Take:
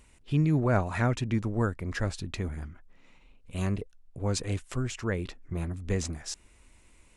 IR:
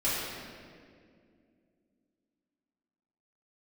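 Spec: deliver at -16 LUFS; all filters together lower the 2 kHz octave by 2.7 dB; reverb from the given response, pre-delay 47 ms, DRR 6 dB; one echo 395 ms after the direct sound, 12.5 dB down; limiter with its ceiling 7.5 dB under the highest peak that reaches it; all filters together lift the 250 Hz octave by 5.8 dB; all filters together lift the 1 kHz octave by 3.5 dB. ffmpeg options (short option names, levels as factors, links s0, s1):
-filter_complex "[0:a]equalizer=f=250:t=o:g=7.5,equalizer=f=1000:t=o:g=6,equalizer=f=2000:t=o:g=-6.5,alimiter=limit=0.126:level=0:latency=1,aecho=1:1:395:0.237,asplit=2[s0][s1];[1:a]atrim=start_sample=2205,adelay=47[s2];[s1][s2]afir=irnorm=-1:irlink=0,volume=0.15[s3];[s0][s3]amix=inputs=2:normalize=0,volume=4.22"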